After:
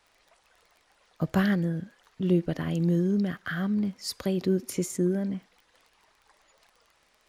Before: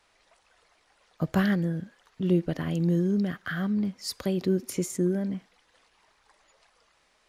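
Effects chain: crackle 17/s -45 dBFS

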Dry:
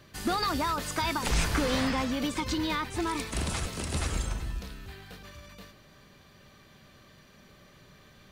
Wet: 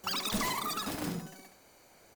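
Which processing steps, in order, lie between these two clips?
wide varispeed 3.86×; echo 70 ms -8 dB; gain -5 dB

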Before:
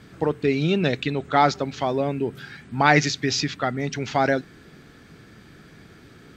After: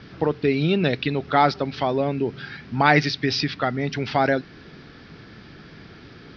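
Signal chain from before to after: in parallel at -3 dB: compressor, threshold -28 dBFS, peak gain reduction 15.5 dB; on the sum: bit-crush 8-bit; steep low-pass 5400 Hz 72 dB/oct; gain -1 dB

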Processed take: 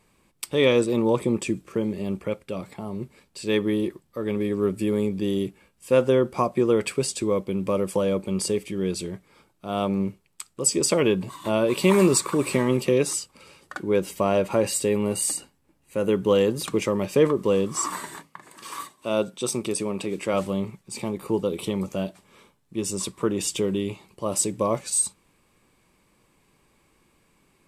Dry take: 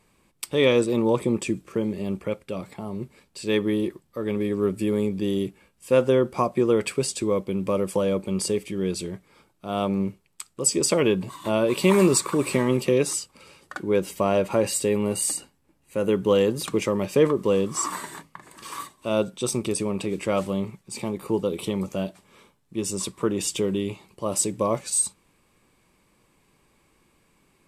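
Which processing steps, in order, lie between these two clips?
18.16–20.34 HPF 170 Hz 6 dB/oct

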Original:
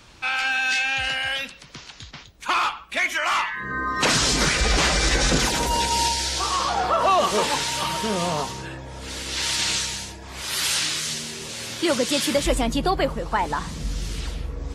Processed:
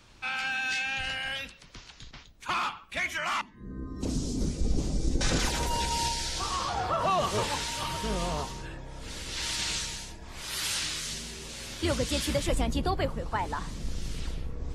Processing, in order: octaver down 2 oct, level +3 dB; 3.41–5.21 EQ curve 120 Hz 0 dB, 270 Hz +5 dB, 1700 Hz -28 dB, 6200 Hz -10 dB; gain -8 dB

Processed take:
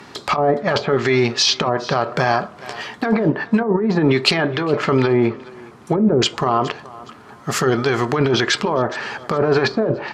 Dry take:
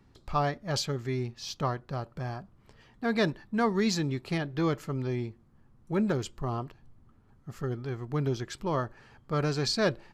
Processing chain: weighting filter A; 5.01–6.22 treble ducked by the level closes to 430 Hz, closed at -31.5 dBFS; 7.51–8.34 high shelf 4900 Hz +5.5 dB; treble ducked by the level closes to 530 Hz, closed at -26.5 dBFS; negative-ratio compressor -40 dBFS, ratio -1; thinning echo 0.416 s, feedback 27%, high-pass 420 Hz, level -21 dB; reverb RT60 0.40 s, pre-delay 4 ms, DRR 13 dB; maximiser +30.5 dB; 3.63–4.31 three-band expander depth 100%; gain -5.5 dB

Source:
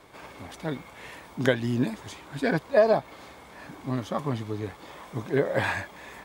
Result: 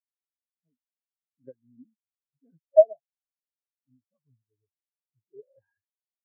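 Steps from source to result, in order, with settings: in parallel at -7 dB: companded quantiser 2-bit; on the sum: spectral expander 4:1; gain -3.5 dB

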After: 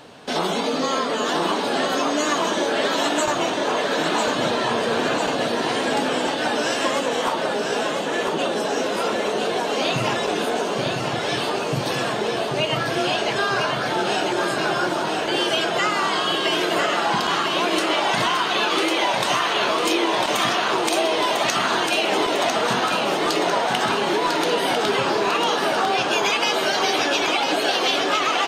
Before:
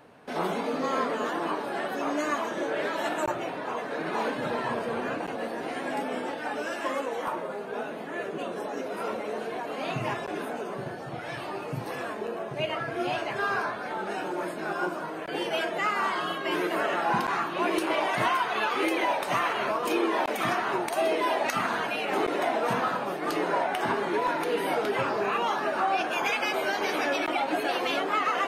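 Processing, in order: band shelf 4900 Hz +10 dB; compressor, threshold -28 dBFS, peak gain reduction 8 dB; on a send: feedback echo 0.999 s, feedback 57%, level -5 dB; on the sum: gain +9 dB

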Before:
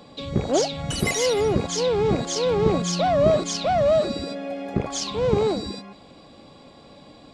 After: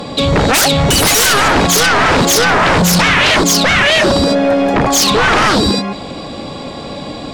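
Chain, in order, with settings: 2.36–5 dynamic EQ 2300 Hz, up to -7 dB, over -42 dBFS, Q 0.99; sine folder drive 18 dB, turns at -7.5 dBFS

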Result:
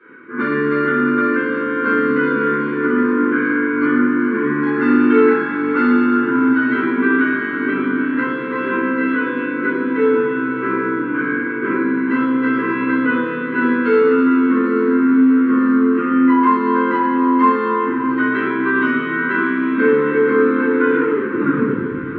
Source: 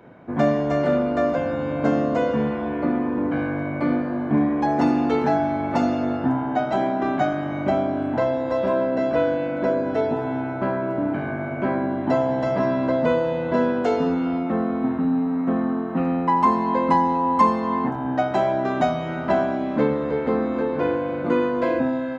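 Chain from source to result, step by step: tape stop at the end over 1.28 s; tilt +4.5 dB/oct; in parallel at +0.5 dB: limiter -17 dBFS, peak gain reduction 11 dB; on the sum: Butterworth band-stop 700 Hz, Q 0.88; speaker cabinet 160–2100 Hz, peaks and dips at 180 Hz -6 dB, 260 Hz +6 dB, 380 Hz +6 dB, 720 Hz -4 dB, 1400 Hz +5 dB; diffused feedback echo 0.686 s, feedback 67%, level -11 dB; reverb RT60 0.70 s, pre-delay 3 ms, DRR -12 dB; gain -8.5 dB

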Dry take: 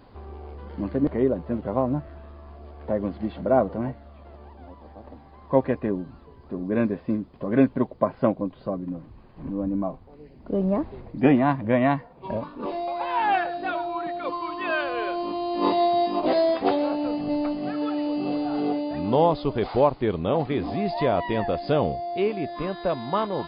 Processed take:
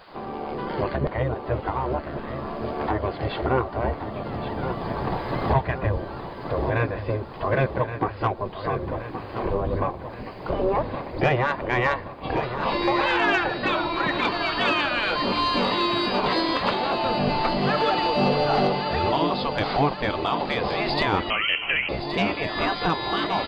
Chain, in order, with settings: recorder AGC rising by 10 dB/s; spectral gate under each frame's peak -10 dB weak; 3.83–5.98 bell 72 Hz +12 dB 2.2 oct; in parallel at -2 dB: compressor, threshold -39 dBFS, peak gain reduction 17.5 dB; on the sum: soft clip -17 dBFS, distortion -22 dB; feedback echo 1.122 s, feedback 56%, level -10 dB; 21.3–21.89 inverted band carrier 3100 Hz; gain +6 dB

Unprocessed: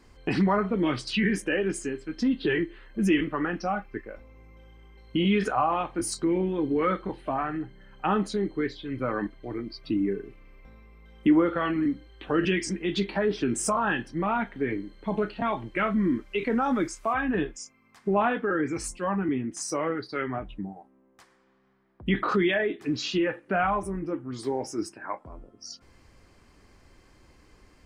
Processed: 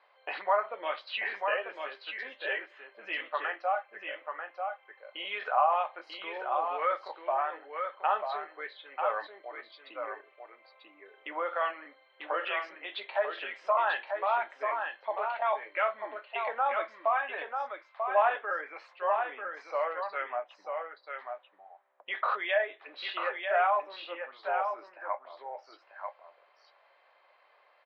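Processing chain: Chebyshev band-pass 580–4000 Hz, order 4; tilt -2.5 dB/oct; echo 0.941 s -5.5 dB

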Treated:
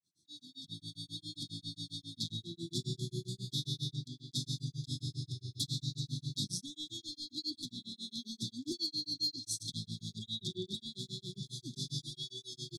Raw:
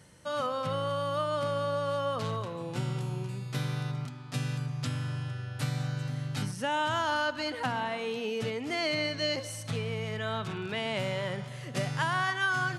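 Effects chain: opening faded in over 1.69 s; weighting filter D; compressor 5:1, threshold -29 dBFS, peak gain reduction 9.5 dB; grains 0.131 s, grains 7.4/s, spray 17 ms, pitch spread up and down by 0 st; soft clip -23.5 dBFS, distortion -22 dB; brick-wall FIR band-stop 390–3300 Hz; gain +3.5 dB

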